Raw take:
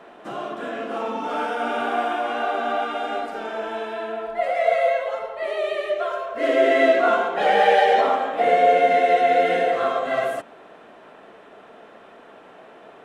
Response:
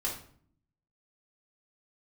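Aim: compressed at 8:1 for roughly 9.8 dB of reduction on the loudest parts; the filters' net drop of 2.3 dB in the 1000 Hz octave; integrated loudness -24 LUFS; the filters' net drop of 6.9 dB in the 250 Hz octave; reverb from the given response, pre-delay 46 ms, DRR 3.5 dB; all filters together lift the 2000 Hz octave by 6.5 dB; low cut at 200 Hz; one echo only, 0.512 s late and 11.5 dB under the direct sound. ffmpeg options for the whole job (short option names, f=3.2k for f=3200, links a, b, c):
-filter_complex "[0:a]highpass=200,equalizer=f=250:t=o:g=-7.5,equalizer=f=1k:t=o:g=-5,equalizer=f=2k:t=o:g=9,acompressor=threshold=-23dB:ratio=8,aecho=1:1:512:0.266,asplit=2[a][b];[1:a]atrim=start_sample=2205,adelay=46[c];[b][c]afir=irnorm=-1:irlink=0,volume=-7.5dB[d];[a][d]amix=inputs=2:normalize=0,volume=1.5dB"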